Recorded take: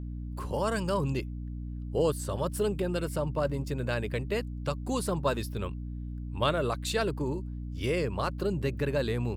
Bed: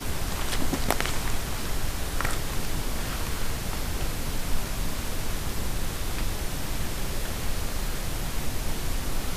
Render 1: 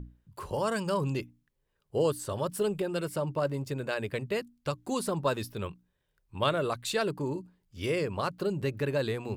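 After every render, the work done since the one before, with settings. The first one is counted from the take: notches 60/120/180/240/300 Hz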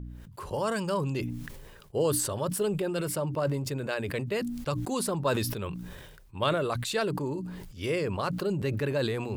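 sustainer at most 37 dB/s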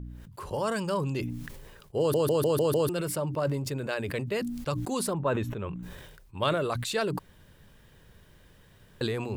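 1.99 stutter in place 0.15 s, 6 plays; 5.13–5.83 running mean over 9 samples; 7.19–9.01 room tone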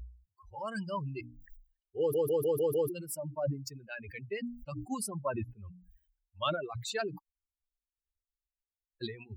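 per-bin expansion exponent 3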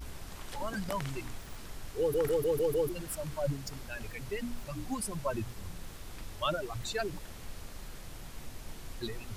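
add bed -15.5 dB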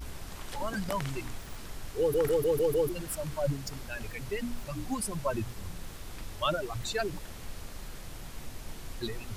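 gain +2.5 dB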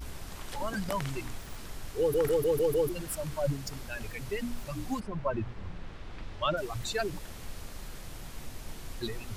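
4.99–6.56 LPF 2000 Hz -> 3900 Hz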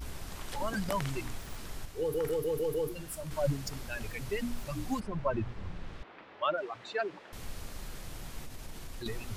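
1.85–3.31 resonator 79 Hz, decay 0.33 s; 6.03–7.33 BPF 380–2500 Hz; 8.43–9.06 compressor 3:1, threshold -38 dBFS

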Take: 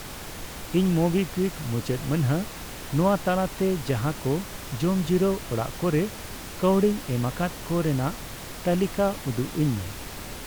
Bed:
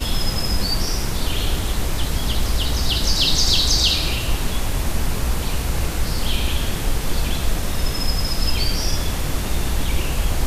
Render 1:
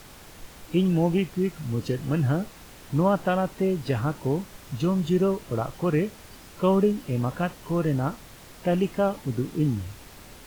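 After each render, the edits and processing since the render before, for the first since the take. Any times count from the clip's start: noise print and reduce 9 dB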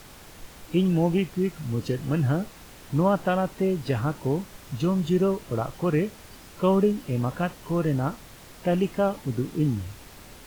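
nothing audible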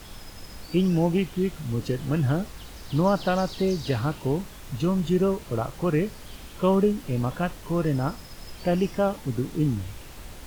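add bed -23.5 dB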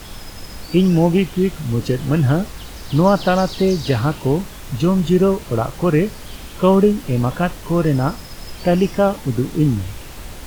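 gain +8 dB

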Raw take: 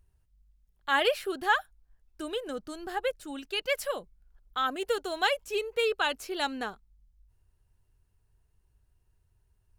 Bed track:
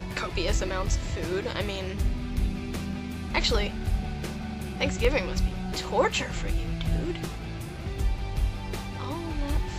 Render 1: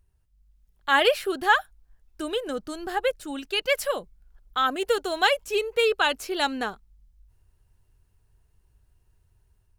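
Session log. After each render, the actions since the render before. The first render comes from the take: AGC gain up to 5.5 dB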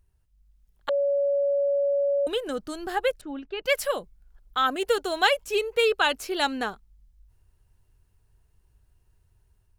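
0.89–2.27 bleep 564 Hz -20.5 dBFS; 3.21–3.65 tape spacing loss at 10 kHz 41 dB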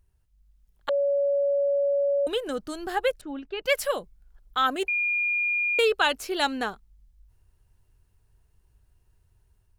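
4.88–5.79 bleep 2420 Hz -22.5 dBFS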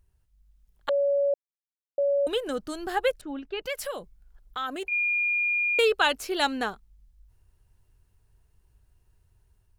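1.34–1.98 mute; 3.63–4.92 compressor 2.5:1, threshold -32 dBFS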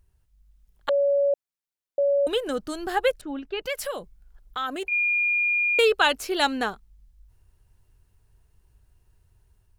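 gain +2.5 dB

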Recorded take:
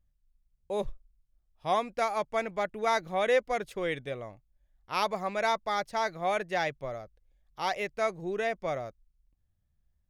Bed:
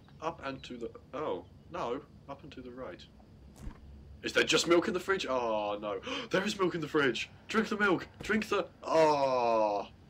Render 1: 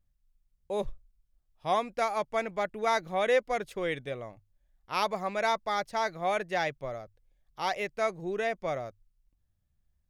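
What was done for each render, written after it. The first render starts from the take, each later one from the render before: notches 50/100 Hz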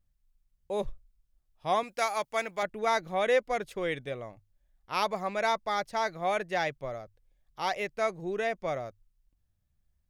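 1.83–2.63 tilt +2.5 dB/oct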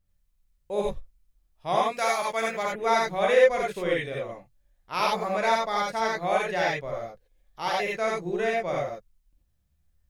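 non-linear reverb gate 0.11 s rising, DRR -3 dB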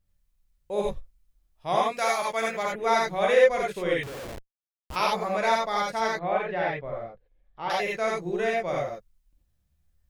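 4.03–4.96 Schmitt trigger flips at -38 dBFS; 6.19–7.7 air absorption 390 m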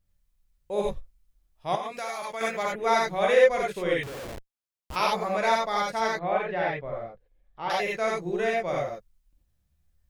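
1.75–2.41 compressor 3:1, threshold -32 dBFS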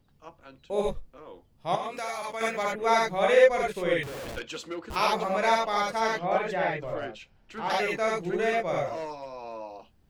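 add bed -11 dB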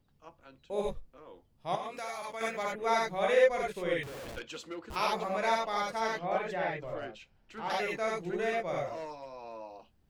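gain -5.5 dB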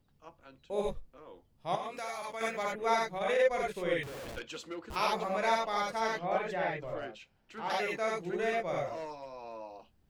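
2.95–3.51 transient shaper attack -11 dB, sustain -5 dB; 7.02–8.43 low shelf 77 Hz -10 dB

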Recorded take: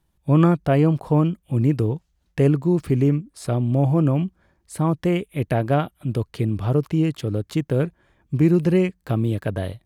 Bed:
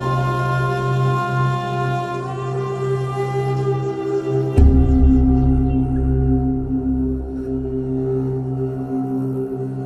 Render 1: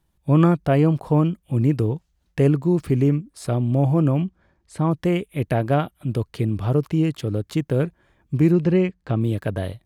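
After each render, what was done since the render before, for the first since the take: 4.22–4.91 air absorption 59 m; 8.52–9.21 air absorption 100 m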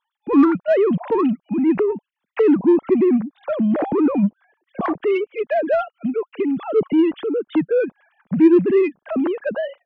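sine-wave speech; in parallel at -4.5 dB: soft clip -22 dBFS, distortion -7 dB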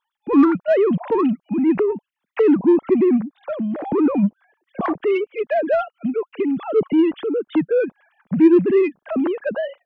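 3.18–3.85 fade out, to -9 dB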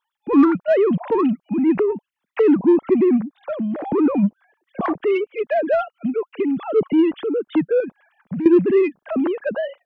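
7.8–8.46 compressor, threshold -23 dBFS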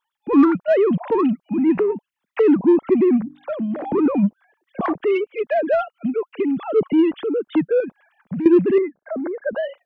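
1.48–1.94 de-hum 195.6 Hz, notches 38; 3.2–4.06 notches 50/100/150/200/250/300 Hz; 8.78–9.53 rippled Chebyshev low-pass 2200 Hz, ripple 9 dB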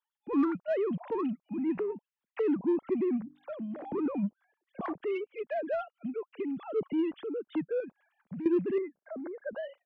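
gain -13.5 dB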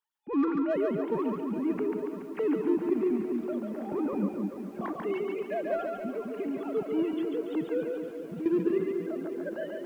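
split-band echo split 380 Hz, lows 0.205 s, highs 0.141 s, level -3.5 dB; lo-fi delay 0.428 s, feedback 80%, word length 9-bit, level -13.5 dB

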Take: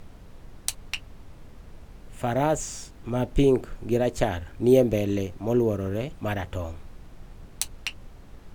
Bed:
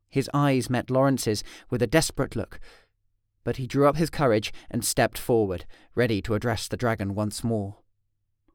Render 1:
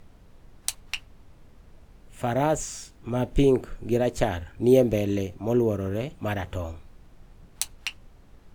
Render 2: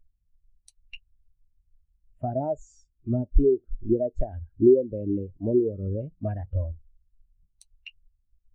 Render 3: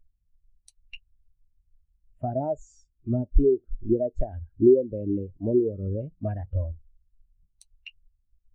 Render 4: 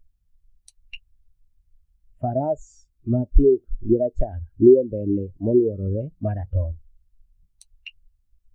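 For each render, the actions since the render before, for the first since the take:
noise print and reduce 6 dB
compressor 12:1, threshold -27 dBFS, peak gain reduction 15 dB; spectral expander 2.5:1
nothing audible
gain +4.5 dB

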